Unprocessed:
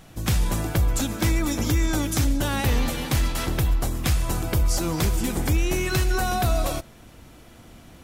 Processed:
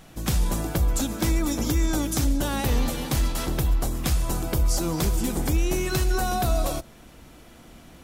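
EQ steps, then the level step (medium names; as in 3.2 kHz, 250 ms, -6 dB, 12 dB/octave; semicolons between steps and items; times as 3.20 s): dynamic bell 2.1 kHz, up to -5 dB, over -42 dBFS, Q 0.94; peaking EQ 100 Hz -13 dB 0.29 oct; 0.0 dB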